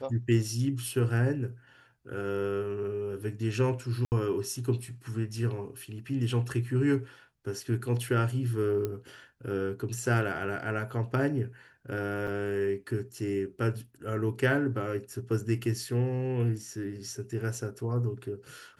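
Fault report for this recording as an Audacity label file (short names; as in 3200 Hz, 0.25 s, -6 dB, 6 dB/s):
4.050000	4.120000	gap 69 ms
8.850000	8.850000	pop -19 dBFS
12.270000	12.280000	gap 5.4 ms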